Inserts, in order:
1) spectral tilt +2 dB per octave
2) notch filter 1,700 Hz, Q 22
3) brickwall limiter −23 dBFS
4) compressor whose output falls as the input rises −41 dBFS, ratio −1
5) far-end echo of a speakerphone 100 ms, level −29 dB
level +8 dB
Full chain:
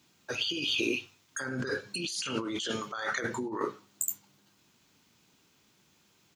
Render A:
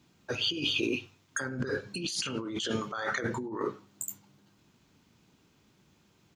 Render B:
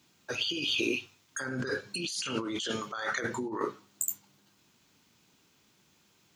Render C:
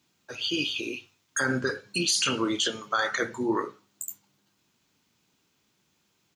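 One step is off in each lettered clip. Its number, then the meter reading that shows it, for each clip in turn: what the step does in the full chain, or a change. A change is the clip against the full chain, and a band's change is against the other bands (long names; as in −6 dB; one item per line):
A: 1, 125 Hz band +3.5 dB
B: 5, echo-to-direct ratio −33.0 dB to none audible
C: 4, change in crest factor −8.0 dB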